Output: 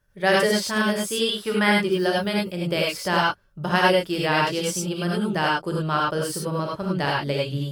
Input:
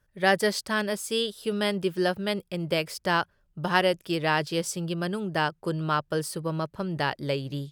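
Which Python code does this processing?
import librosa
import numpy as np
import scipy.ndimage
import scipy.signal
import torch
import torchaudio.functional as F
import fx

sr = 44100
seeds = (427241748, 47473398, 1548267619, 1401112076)

y = fx.band_shelf(x, sr, hz=1400.0, db=9.5, octaves=1.7, at=(1.27, 1.82))
y = fx.rev_gated(y, sr, seeds[0], gate_ms=120, shape='rising', drr_db=-3.0)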